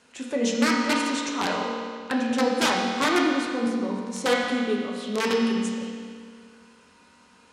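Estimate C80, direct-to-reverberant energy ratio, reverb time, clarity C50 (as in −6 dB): 2.0 dB, −3.0 dB, 2.1 s, 0.5 dB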